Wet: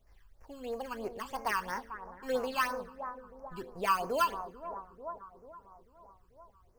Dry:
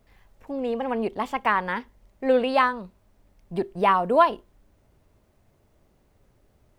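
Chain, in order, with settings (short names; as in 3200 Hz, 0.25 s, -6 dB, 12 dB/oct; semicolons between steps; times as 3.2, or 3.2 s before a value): bell 230 Hz -14 dB 2.5 oct; in parallel at -7 dB: sample-rate reducer 3700 Hz, jitter 0%; on the sum: analogue delay 0.441 s, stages 4096, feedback 56%, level -11 dB; two-slope reverb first 0.52 s, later 1.5 s, from -16 dB, DRR 13 dB; phaser stages 12, 3 Hz, lowest notch 620–3500 Hz; gain -5 dB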